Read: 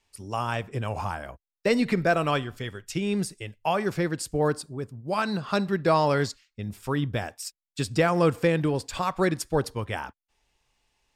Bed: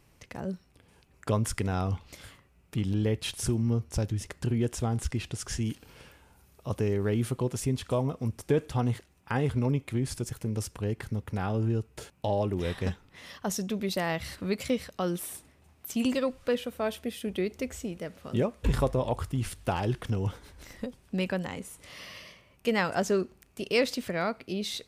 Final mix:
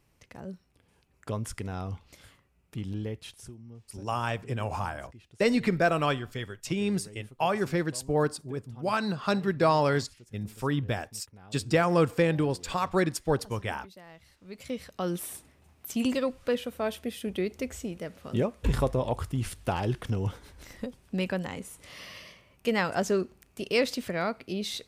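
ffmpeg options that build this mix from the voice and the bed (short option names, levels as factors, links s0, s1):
-filter_complex "[0:a]adelay=3750,volume=0.841[s0];[1:a]volume=5.31,afade=t=out:st=2.95:d=0.61:silence=0.188365,afade=t=in:st=14.44:d=0.69:silence=0.0944061[s1];[s0][s1]amix=inputs=2:normalize=0"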